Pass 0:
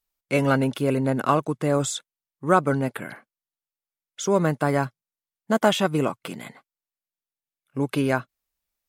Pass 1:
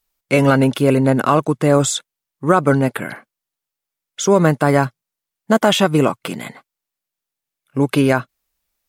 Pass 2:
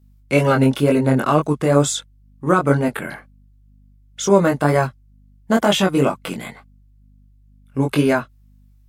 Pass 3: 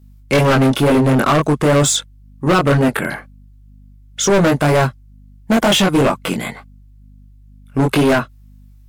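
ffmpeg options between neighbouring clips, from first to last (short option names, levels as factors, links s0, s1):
-af "alimiter=level_in=2.99:limit=0.891:release=50:level=0:latency=1,volume=0.891"
-af "aeval=exprs='val(0)+0.00316*(sin(2*PI*50*n/s)+sin(2*PI*2*50*n/s)/2+sin(2*PI*3*50*n/s)/3+sin(2*PI*4*50*n/s)/4+sin(2*PI*5*50*n/s)/5)':c=same,flanger=delay=19.5:depth=3.1:speed=2.1,volume=1.12"
-af "asoftclip=type=hard:threshold=0.133,volume=2.37"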